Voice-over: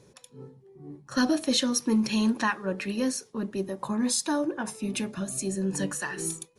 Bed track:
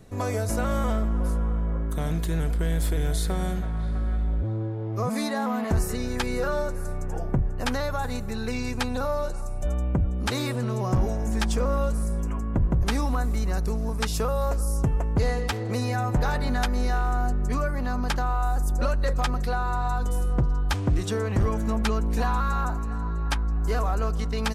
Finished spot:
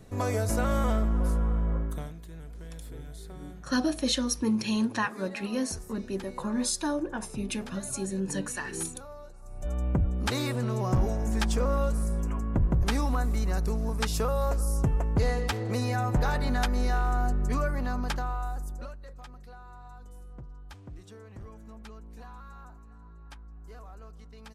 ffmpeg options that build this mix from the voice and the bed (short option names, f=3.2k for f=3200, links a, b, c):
-filter_complex "[0:a]adelay=2550,volume=-2.5dB[a];[1:a]volume=15dB,afade=t=out:st=1.76:d=0.37:silence=0.141254,afade=t=in:st=9.41:d=0.48:silence=0.158489,afade=t=out:st=17.72:d=1.27:silence=0.105925[b];[a][b]amix=inputs=2:normalize=0"